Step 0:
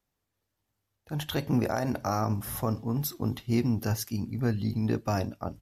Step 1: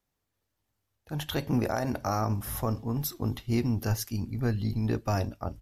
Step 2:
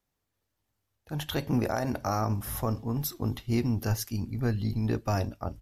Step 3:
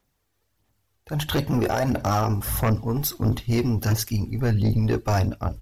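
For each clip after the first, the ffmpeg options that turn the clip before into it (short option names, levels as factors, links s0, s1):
-af "asubboost=boost=3.5:cutoff=79"
-af anull
-af "aphaser=in_gain=1:out_gain=1:delay=2.7:decay=0.4:speed=1.5:type=sinusoidal,aeval=exprs='0.237*sin(PI/2*2.24*val(0)/0.237)':c=same,volume=0.668"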